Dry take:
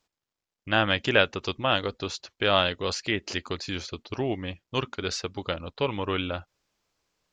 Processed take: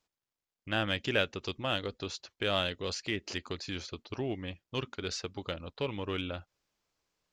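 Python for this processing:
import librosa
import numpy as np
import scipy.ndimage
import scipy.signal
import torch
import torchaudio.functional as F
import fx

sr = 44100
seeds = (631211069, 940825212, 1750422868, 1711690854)

p1 = fx.dynamic_eq(x, sr, hz=1000.0, q=1.0, threshold_db=-38.0, ratio=4.0, max_db=-5)
p2 = np.clip(10.0 ** (23.5 / 20.0) * p1, -1.0, 1.0) / 10.0 ** (23.5 / 20.0)
p3 = p1 + F.gain(torch.from_numpy(p2), -11.0).numpy()
y = F.gain(torch.from_numpy(p3), -7.5).numpy()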